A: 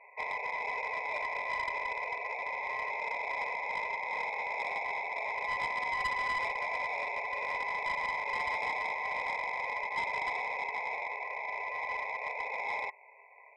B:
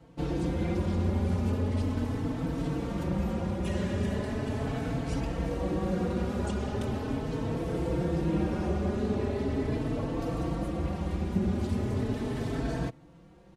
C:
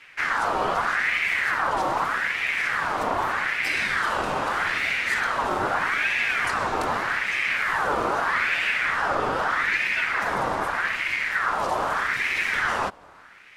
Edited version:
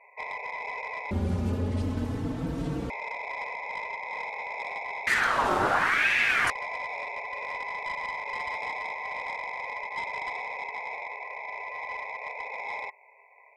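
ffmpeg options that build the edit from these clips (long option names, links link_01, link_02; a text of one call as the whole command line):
ffmpeg -i take0.wav -i take1.wav -i take2.wav -filter_complex "[0:a]asplit=3[link_01][link_02][link_03];[link_01]atrim=end=1.112[link_04];[1:a]atrim=start=1.108:end=2.902[link_05];[link_02]atrim=start=2.898:end=5.072[link_06];[2:a]atrim=start=5.068:end=6.502[link_07];[link_03]atrim=start=6.498[link_08];[link_04][link_05]acrossfade=duration=0.004:curve1=hsin:curve2=hsin[link_09];[link_09][link_06]acrossfade=duration=0.004:curve1=hsin:curve2=hsin[link_10];[link_10][link_07]acrossfade=duration=0.004:curve1=hsin:curve2=hsin[link_11];[link_11][link_08]acrossfade=duration=0.004:curve1=hsin:curve2=hsin" out.wav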